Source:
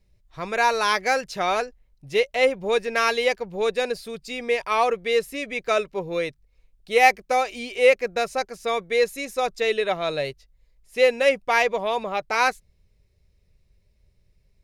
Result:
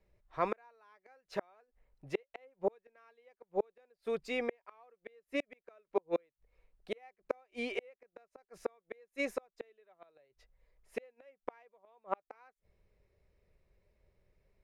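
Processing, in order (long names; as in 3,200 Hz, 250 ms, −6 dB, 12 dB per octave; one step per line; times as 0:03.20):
gate with flip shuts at −19 dBFS, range −41 dB
three-way crossover with the lows and the highs turned down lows −12 dB, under 300 Hz, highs −16 dB, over 2,100 Hz
level +1.5 dB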